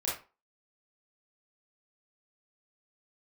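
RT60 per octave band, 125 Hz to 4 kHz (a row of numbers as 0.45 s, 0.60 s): 0.30 s, 0.30 s, 0.30 s, 0.35 s, 0.30 s, 0.25 s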